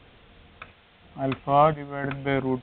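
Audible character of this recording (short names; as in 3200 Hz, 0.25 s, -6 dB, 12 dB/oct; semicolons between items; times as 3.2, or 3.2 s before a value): chopped level 0.98 Hz, depth 60%, duty 70%; a quantiser's noise floor 8-bit, dither triangular; µ-law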